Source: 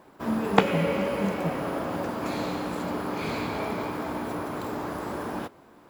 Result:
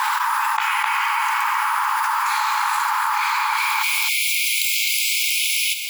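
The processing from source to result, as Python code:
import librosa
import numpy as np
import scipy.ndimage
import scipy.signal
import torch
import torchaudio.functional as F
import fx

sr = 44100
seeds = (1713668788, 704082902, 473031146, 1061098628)

y = fx.brickwall_highpass(x, sr, low_hz=fx.steps((0.0, 820.0), (3.56, 2100.0)))
y = fx.dynamic_eq(y, sr, hz=3600.0, q=1.0, threshold_db=-51.0, ratio=4.0, max_db=-6)
y = fx.echo_feedback(y, sr, ms=258, feedback_pct=15, wet_db=-7.5)
y = fx.env_flatten(y, sr, amount_pct=100)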